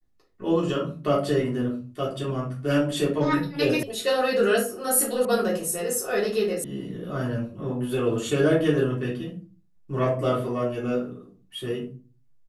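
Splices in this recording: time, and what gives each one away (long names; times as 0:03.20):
0:03.83: cut off before it has died away
0:05.25: cut off before it has died away
0:06.64: cut off before it has died away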